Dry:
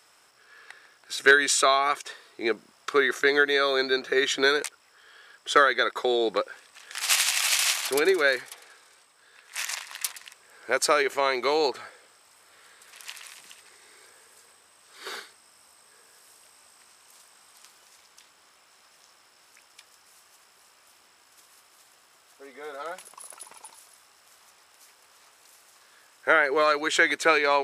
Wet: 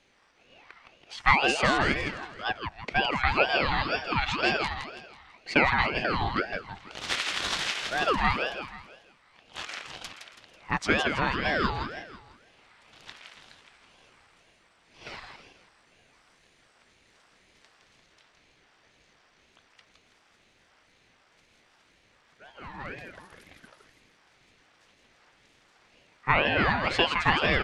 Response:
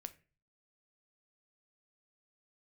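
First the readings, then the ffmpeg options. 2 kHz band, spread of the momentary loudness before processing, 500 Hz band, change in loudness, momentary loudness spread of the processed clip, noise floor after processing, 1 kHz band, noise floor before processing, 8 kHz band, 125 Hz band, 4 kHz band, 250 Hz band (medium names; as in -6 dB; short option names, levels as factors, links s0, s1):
-2.5 dB, 20 LU, -7.0 dB, -3.0 dB, 20 LU, -64 dBFS, -0.5 dB, -60 dBFS, -14.5 dB, no reading, -3.0 dB, +1.0 dB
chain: -af "highpass=340,lowpass=3500,aecho=1:1:164|328|492|656|820:0.531|0.228|0.0982|0.0422|0.0181,aeval=exprs='val(0)*sin(2*PI*770*n/s+770*0.55/2*sin(2*PI*2*n/s))':c=same"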